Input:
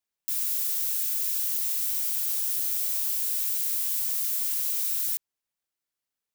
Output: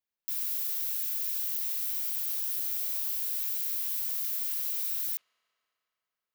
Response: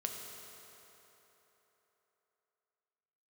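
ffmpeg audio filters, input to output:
-filter_complex "[0:a]equalizer=f=8.1k:t=o:w=0.87:g=-7,asplit=2[a][b];[1:a]atrim=start_sample=2205,lowpass=2.3k,adelay=43[c];[b][c]afir=irnorm=-1:irlink=0,volume=-14.5dB[d];[a][d]amix=inputs=2:normalize=0,volume=-3.5dB"

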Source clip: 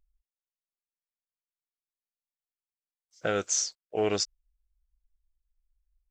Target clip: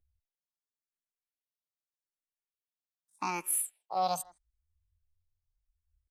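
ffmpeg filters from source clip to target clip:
-filter_complex "[0:a]asetrate=76340,aresample=44100,atempo=0.577676,asplit=2[a][b];[b]adelay=160,highpass=300,lowpass=3.4k,asoftclip=type=hard:threshold=-24.5dB,volume=-21dB[c];[a][c]amix=inputs=2:normalize=0,asplit=2[d][e];[e]afreqshift=0.82[f];[d][f]amix=inputs=2:normalize=1,volume=-2dB"

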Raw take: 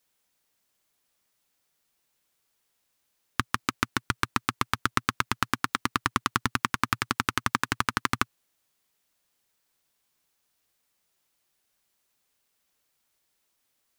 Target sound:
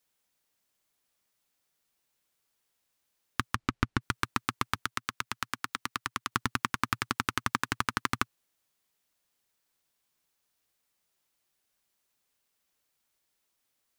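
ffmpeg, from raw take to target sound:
-filter_complex "[0:a]asplit=3[a][b][c];[a]afade=t=out:st=3.54:d=0.02[d];[b]aemphasis=mode=reproduction:type=bsi,afade=t=in:st=3.54:d=0.02,afade=t=out:st=4:d=0.02[e];[c]afade=t=in:st=4:d=0.02[f];[d][e][f]amix=inputs=3:normalize=0,asettb=1/sr,asplit=3[g][h][i];[g]atrim=end=4.754[j];[h]atrim=start=4.75:end=6.32,asetpts=PTS-STARTPTS,afade=t=in:d=0.004:c=qsin,afade=t=out:st=1.566:d=0.004:c=qsin,acrossover=split=320|840[k][l][m];[k]acompressor=threshold=-42dB:ratio=4[n];[l]acompressor=threshold=-43dB:ratio=4[o];[m]acompressor=threshold=-26dB:ratio=4[p];[n][o][p]amix=inputs=3:normalize=0[q];[i]atrim=start=6.316[r];[j][q]acrossfade=d=0.004:c1=hsin:c2=qsin[s];[s][r]acrossfade=d=0.004:c1=qsin:c2=hsin,volume=-3.5dB"

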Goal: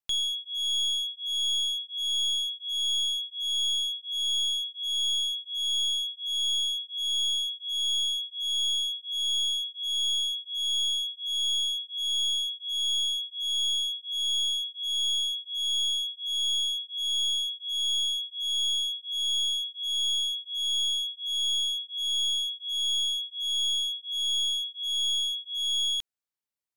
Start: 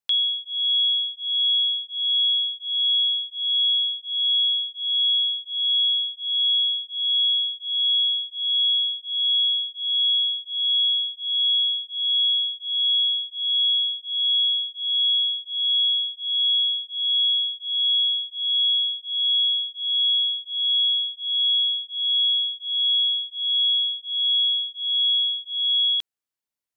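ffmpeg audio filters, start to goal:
-af "aeval=exprs='clip(val(0),-1,0.0531)':c=same,volume=-4.5dB"

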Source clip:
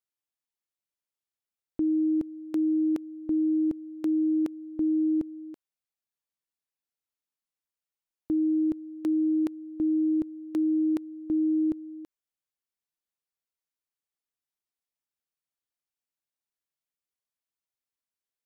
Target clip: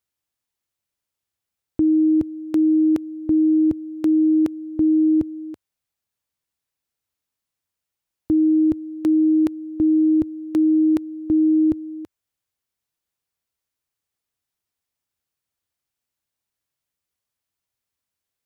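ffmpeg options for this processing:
-af "equalizer=f=86:w=1:g=9.5,volume=7.5dB"

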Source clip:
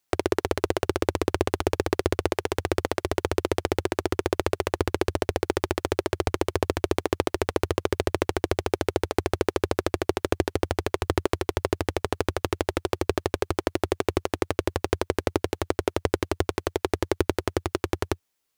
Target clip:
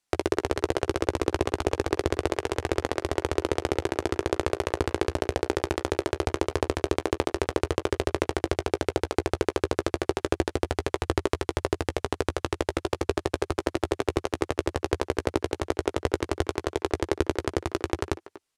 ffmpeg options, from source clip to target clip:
-filter_complex "[0:a]lowpass=f=11k:w=0.5412,lowpass=f=11k:w=1.3066,asplit=2[a][b];[b]adelay=15,volume=-12dB[c];[a][c]amix=inputs=2:normalize=0,asplit=2[d][e];[e]adelay=240,highpass=300,lowpass=3.4k,asoftclip=type=hard:threshold=-13.5dB,volume=-14dB[f];[d][f]amix=inputs=2:normalize=0,volume=-1.5dB"

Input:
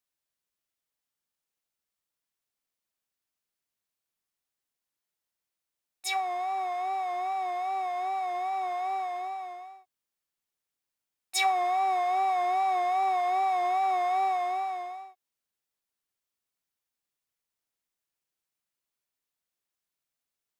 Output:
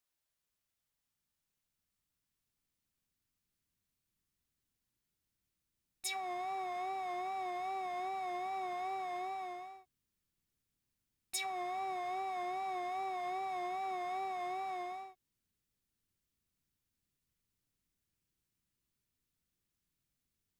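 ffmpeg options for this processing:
-af "asubboost=boost=8:cutoff=230,acompressor=threshold=-36dB:ratio=10"

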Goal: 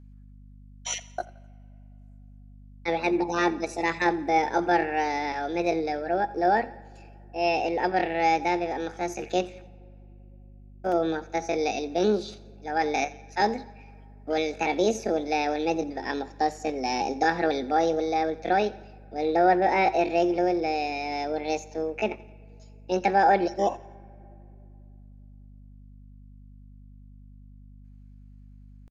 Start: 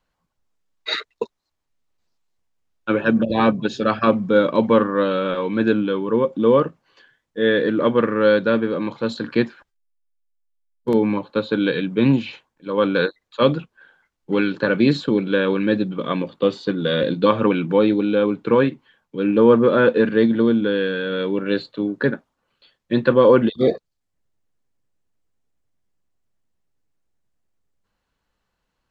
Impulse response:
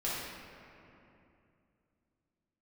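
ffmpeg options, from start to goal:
-filter_complex "[0:a]asetrate=68011,aresample=44100,atempo=0.64842,aeval=exprs='val(0)+0.01*(sin(2*PI*50*n/s)+sin(2*PI*2*50*n/s)/2+sin(2*PI*3*50*n/s)/3+sin(2*PI*4*50*n/s)/4+sin(2*PI*5*50*n/s)/5)':c=same,aecho=1:1:86|172|258:0.0891|0.041|0.0189,asplit=2[a][b];[1:a]atrim=start_sample=2205[c];[b][c]afir=irnorm=-1:irlink=0,volume=-26.5dB[d];[a][d]amix=inputs=2:normalize=0,volume=-7.5dB"

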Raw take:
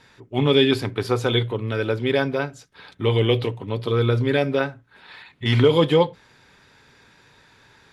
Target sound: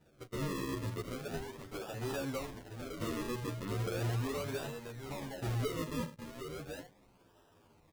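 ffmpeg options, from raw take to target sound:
-filter_complex "[0:a]acompressor=threshold=-26dB:ratio=8,asplit=3[a][b][c];[a]afade=t=out:st=1:d=0.02[d];[b]highpass=1.4k,afade=t=in:st=1:d=0.02,afade=t=out:st=1.93:d=0.02[e];[c]afade=t=in:st=1.93:d=0.02[f];[d][e][f]amix=inputs=3:normalize=0,asoftclip=type=tanh:threshold=-31dB,agate=range=-10dB:threshold=-45dB:ratio=16:detection=peak,aecho=1:1:764:0.447,acrusher=samples=40:mix=1:aa=0.000001:lfo=1:lforange=40:lforate=0.37,asplit=2[g][h];[h]adelay=10.1,afreqshift=-0.63[i];[g][i]amix=inputs=2:normalize=1,volume=1dB"

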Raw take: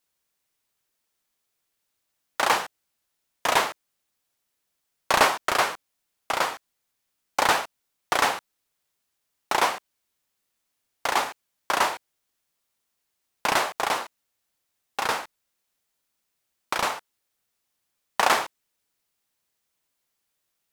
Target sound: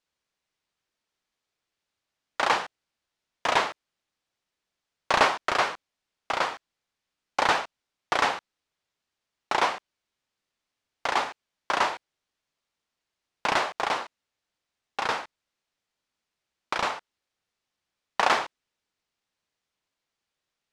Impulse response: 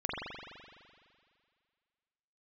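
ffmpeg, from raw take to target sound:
-af "lowpass=5.3k,volume=-1.5dB"

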